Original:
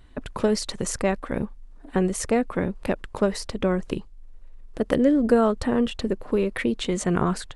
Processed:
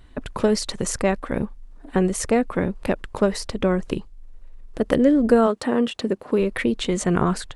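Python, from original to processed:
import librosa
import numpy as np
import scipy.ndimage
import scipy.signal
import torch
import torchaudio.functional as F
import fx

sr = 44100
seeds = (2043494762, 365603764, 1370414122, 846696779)

y = fx.highpass(x, sr, hz=fx.line((5.46, 260.0), (6.38, 110.0)), slope=12, at=(5.46, 6.38), fade=0.02)
y = y * 10.0 ** (2.5 / 20.0)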